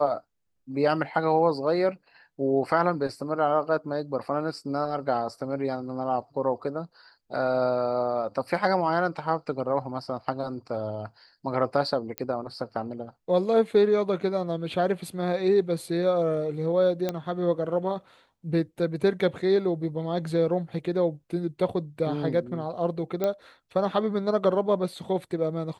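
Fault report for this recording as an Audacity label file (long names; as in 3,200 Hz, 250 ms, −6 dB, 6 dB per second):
12.180000	12.180000	click −14 dBFS
17.090000	17.090000	click −14 dBFS
23.240000	23.240000	click −14 dBFS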